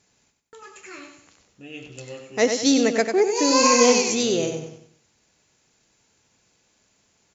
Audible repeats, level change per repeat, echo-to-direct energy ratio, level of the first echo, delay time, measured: 4, -8.5 dB, -6.5 dB, -7.0 dB, 95 ms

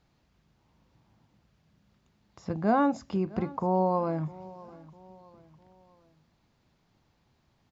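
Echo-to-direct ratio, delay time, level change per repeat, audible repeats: -19.0 dB, 653 ms, -7.5 dB, 3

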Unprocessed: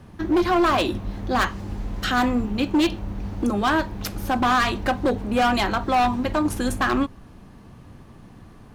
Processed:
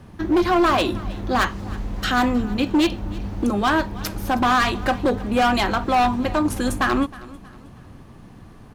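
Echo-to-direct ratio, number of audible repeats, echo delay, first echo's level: -19.5 dB, 2, 316 ms, -20.0 dB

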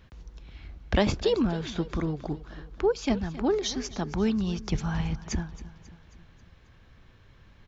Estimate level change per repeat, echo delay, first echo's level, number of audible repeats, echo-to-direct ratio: -5.5 dB, 270 ms, -17.0 dB, 4, -15.5 dB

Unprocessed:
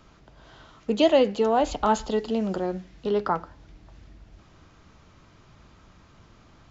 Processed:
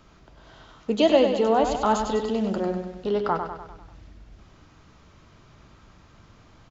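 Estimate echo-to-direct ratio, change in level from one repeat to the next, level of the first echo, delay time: -5.5 dB, -5.5 dB, -7.0 dB, 99 ms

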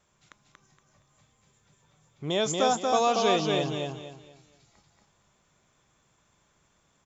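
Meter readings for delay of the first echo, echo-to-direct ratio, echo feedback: 234 ms, -2.5 dB, 30%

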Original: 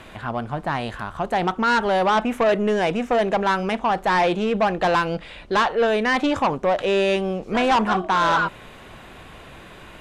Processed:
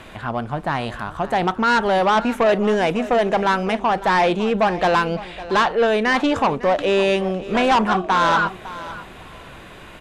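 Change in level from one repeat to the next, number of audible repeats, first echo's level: -14.5 dB, 2, -16.0 dB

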